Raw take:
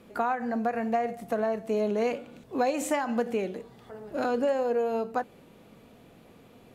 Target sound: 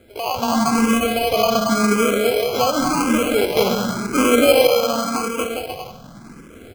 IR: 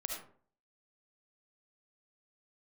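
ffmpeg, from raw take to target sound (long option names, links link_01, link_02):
-filter_complex "[0:a]aecho=1:1:230|402.5|531.9|628.9|701.7:0.631|0.398|0.251|0.158|0.1,alimiter=limit=-19dB:level=0:latency=1:release=71,asettb=1/sr,asplit=3[link_01][link_02][link_03];[link_01]atrim=end=3.554[link_04];[link_02]atrim=start=3.55:end=4.67,asetpts=PTS-STARTPTS,afade=type=in:duration=0.004:curve=qsin,afade=type=out:start_time=1.116:duration=0.004:curve=qsin,acontrast=35[link_05];[link_03]atrim=start=4.666[link_06];[link_04][link_05]acrossfade=duration=0.004:curve1=hsin:curve2=qsin[link_07];[link_07][link_06]acrossfade=duration=0.004:curve1=qsin:curve2=hsin,asplit=2[link_08][link_09];[1:a]atrim=start_sample=2205[link_10];[link_09][link_10]afir=irnorm=-1:irlink=0,volume=-0.5dB[link_11];[link_08][link_11]amix=inputs=2:normalize=0,dynaudnorm=framelen=290:gausssize=3:maxgain=7dB,lowshelf=frequency=180:gain=6,acrusher=samples=24:mix=1:aa=0.000001,asettb=1/sr,asplit=3[link_12][link_13][link_14];[link_12]atrim=end=0.994[link_15];[link_13]atrim=start=0.99:end=1.68,asetpts=PTS-STARTPTS,afade=type=in:duration=0.004:curve=qsin,afade=type=out:start_time=0.686:duration=0.004:curve=qsin,bandreject=frequency=7600:width=7.4[link_16];[link_14]atrim=start=1.676[link_17];[link_15][link_16]acrossfade=duration=0.004:curve1=hsin:curve2=qsin[link_18];[link_18][link_17]acrossfade=duration=0.004:curve1=qsin:curve2=hsin,asplit=2[link_19][link_20];[link_20]afreqshift=0.9[link_21];[link_19][link_21]amix=inputs=2:normalize=1"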